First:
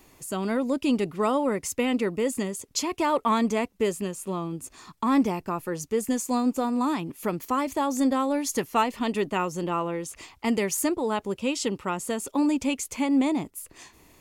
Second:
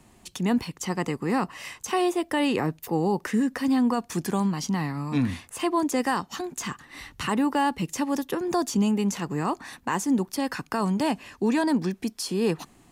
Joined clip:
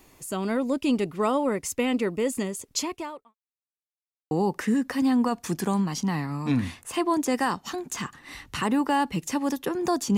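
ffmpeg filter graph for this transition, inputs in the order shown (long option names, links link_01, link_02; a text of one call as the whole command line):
ffmpeg -i cue0.wav -i cue1.wav -filter_complex "[0:a]apad=whole_dur=10.17,atrim=end=10.17,asplit=2[link_01][link_02];[link_01]atrim=end=3.35,asetpts=PTS-STARTPTS,afade=type=out:start_time=2.81:duration=0.54:curve=qua[link_03];[link_02]atrim=start=3.35:end=4.31,asetpts=PTS-STARTPTS,volume=0[link_04];[1:a]atrim=start=2.97:end=8.83,asetpts=PTS-STARTPTS,afade=type=in:duration=0.004:curve=hsin[link_05];[link_03][link_04][link_05]concat=n=3:v=0:a=1" out.wav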